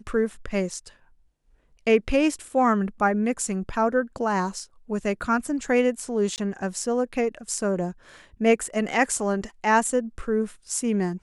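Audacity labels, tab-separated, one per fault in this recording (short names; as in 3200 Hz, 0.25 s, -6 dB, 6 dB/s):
6.360000	6.380000	gap 18 ms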